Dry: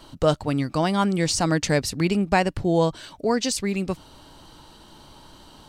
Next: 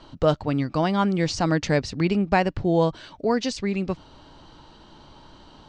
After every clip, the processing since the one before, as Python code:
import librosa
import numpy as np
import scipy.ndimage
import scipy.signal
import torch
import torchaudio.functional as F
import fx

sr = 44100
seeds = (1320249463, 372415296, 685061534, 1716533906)

y = scipy.signal.sosfilt(scipy.signal.butter(4, 6600.0, 'lowpass', fs=sr, output='sos'), x)
y = fx.high_shelf(y, sr, hz=4800.0, db=-8.5)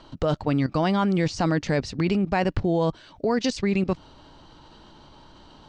y = fx.level_steps(x, sr, step_db=14)
y = y * librosa.db_to_amplitude(6.5)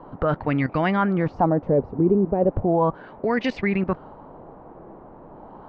y = fx.filter_lfo_lowpass(x, sr, shape='sine', hz=0.36, low_hz=410.0, high_hz=2200.0, q=2.7)
y = fx.dmg_noise_band(y, sr, seeds[0], low_hz=130.0, high_hz=920.0, level_db=-45.0)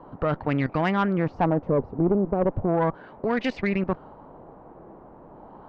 y = fx.tube_stage(x, sr, drive_db=13.0, bias=0.6)